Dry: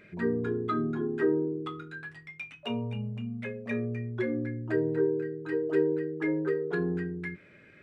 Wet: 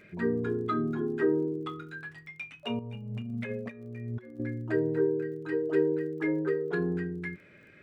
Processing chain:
0:02.79–0:04.40: compressor whose output falls as the input rises −37 dBFS, ratio −0.5
surface crackle 37 per second −52 dBFS

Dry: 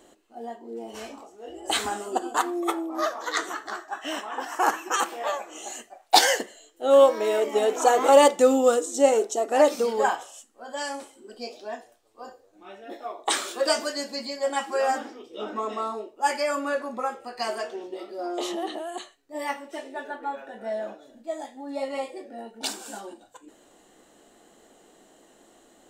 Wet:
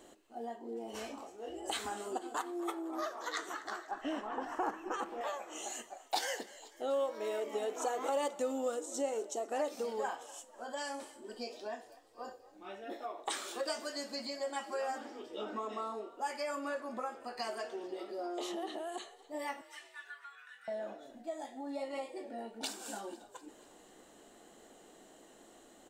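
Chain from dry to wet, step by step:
downward compressor 2.5 to 1, threshold −37 dBFS, peak gain reduction 17.5 dB
0:03.91–0:05.21: spectral tilt −4 dB per octave
0:19.61–0:20.68: elliptic high-pass filter 1,200 Hz, stop band 40 dB
echo with shifted repeats 246 ms, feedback 59%, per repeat +39 Hz, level −20 dB
level −2.5 dB

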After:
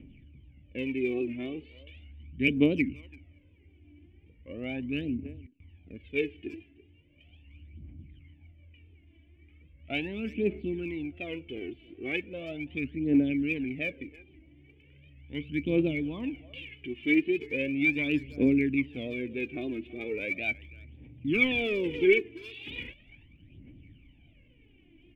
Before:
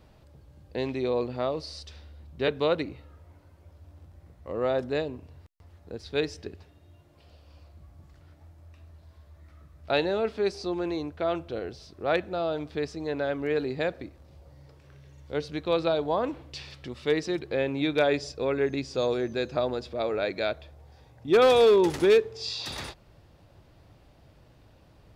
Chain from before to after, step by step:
formant resonators in series i
flat-topped bell 2,200 Hz +11.5 dB 1 octave
far-end echo of a speakerphone 330 ms, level −19 dB
phase shifter 0.38 Hz, delay 3.1 ms, feedback 70%
wow of a warped record 78 rpm, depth 100 cents
level +6.5 dB

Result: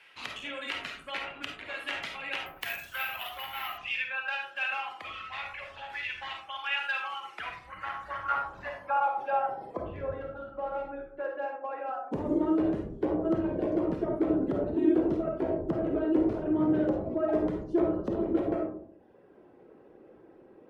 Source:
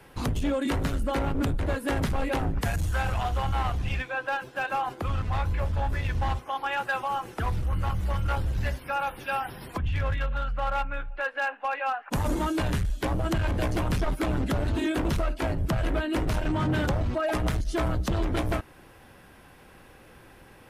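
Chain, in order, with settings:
band-pass filter sweep 2,600 Hz → 380 Hz, 0:07.30–0:10.18
reverb reduction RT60 1.2 s
comb and all-pass reverb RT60 0.67 s, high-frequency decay 0.3×, pre-delay 10 ms, DRR 1 dB
0:02.46–0:03.78: bad sample-rate conversion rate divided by 3×, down none, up hold
level +5.5 dB

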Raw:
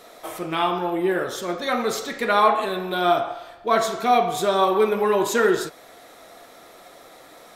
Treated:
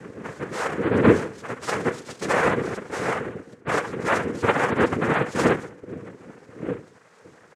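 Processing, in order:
wind on the microphone 240 Hz −25 dBFS
treble cut that deepens with the level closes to 2,000 Hz, closed at −15.5 dBFS
reverb reduction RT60 1.3 s
repeating echo 67 ms, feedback 48%, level −15 dB
phases set to zero 199 Hz
high-shelf EQ 2,700 Hz −8.5 dB
cochlear-implant simulation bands 3
parametric band 480 Hz +8 dB 0.33 octaves

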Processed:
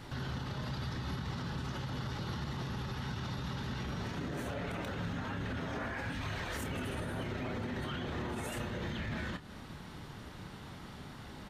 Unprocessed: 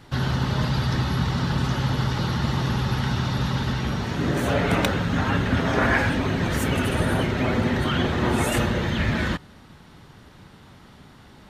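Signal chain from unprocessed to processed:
0:06.12–0:06.57: parametric band 520 Hz → 130 Hz −14.5 dB 1.9 octaves
downward compressor, threshold −31 dBFS, peak gain reduction 14 dB
brickwall limiter −30.5 dBFS, peak gain reduction 10.5 dB
double-tracking delay 28 ms −10.5 dB

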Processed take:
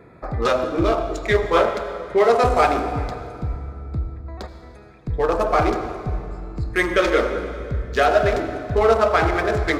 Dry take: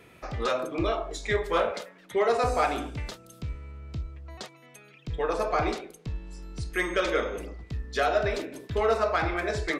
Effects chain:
adaptive Wiener filter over 15 samples
on a send: convolution reverb RT60 2.5 s, pre-delay 68 ms, DRR 9 dB
on the sum: level +8.5 dB

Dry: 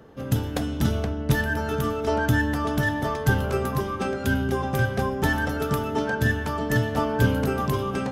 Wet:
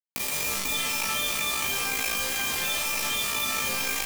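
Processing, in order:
sub-octave generator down 1 octave, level −4 dB
comb and all-pass reverb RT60 1.1 s, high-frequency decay 0.8×, pre-delay 45 ms, DRR −8 dB
steady tone 1,200 Hz −17 dBFS
first-order pre-emphasis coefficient 0.97
automatic gain control gain up to 6 dB
bit reduction 4 bits
on a send: flutter between parallel walls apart 6.7 metres, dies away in 0.32 s
on the sum: wrong playback speed 7.5 ips tape played at 15 ips
notch filter 1,500 Hz, Q 9.1
tuned comb filter 66 Hz, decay 0.18 s, harmonics all, mix 90%
envelope flattener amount 70%

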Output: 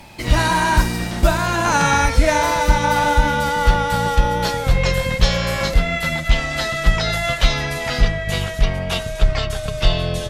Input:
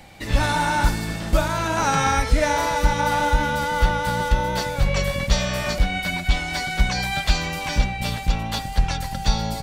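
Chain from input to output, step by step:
gliding playback speed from 110% → 77%
level +4 dB

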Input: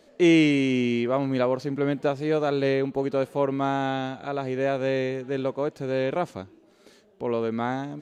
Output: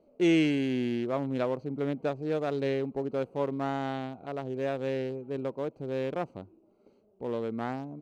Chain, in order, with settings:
adaptive Wiener filter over 25 samples
level −5.5 dB

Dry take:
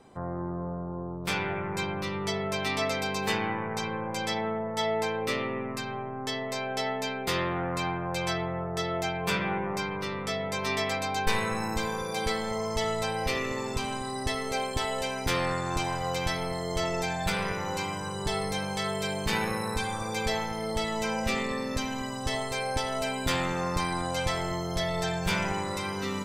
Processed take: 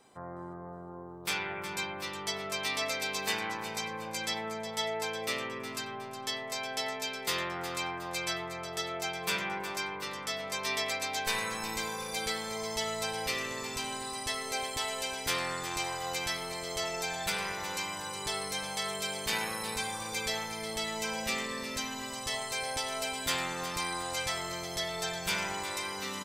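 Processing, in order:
spectral tilt +2.5 dB per octave
repeating echo 364 ms, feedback 42%, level −11 dB
level −5 dB

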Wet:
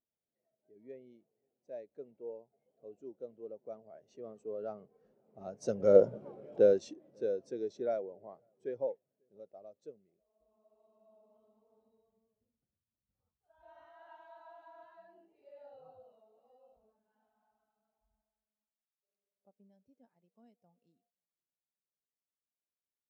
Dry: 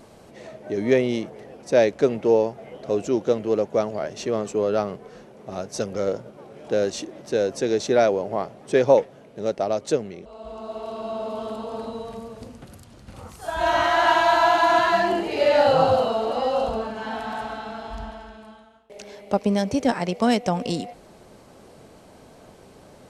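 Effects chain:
source passing by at 0:06.18, 7 m/s, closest 1.4 metres
slap from a distant wall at 93 metres, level −26 dB
every bin expanded away from the loudest bin 1.5 to 1
level +6 dB

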